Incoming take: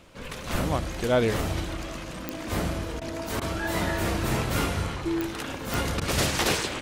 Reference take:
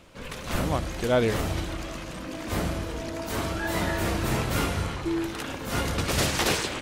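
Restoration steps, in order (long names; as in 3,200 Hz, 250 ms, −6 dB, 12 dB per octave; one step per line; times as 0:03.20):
click removal
repair the gap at 0:03.00/0:03.40/0:06.00, 13 ms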